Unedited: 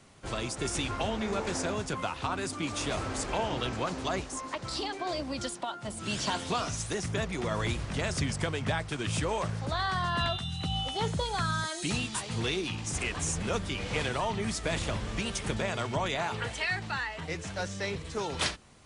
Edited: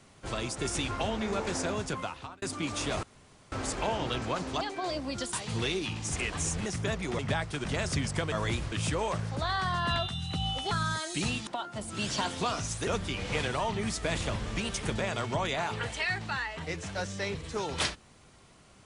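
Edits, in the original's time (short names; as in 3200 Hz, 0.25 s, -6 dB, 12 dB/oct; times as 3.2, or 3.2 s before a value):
1.91–2.42 fade out
3.03 insert room tone 0.49 s
4.12–4.84 cut
5.56–6.96 swap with 12.15–13.48
7.49–7.89 swap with 8.57–9.02
11.01–11.39 cut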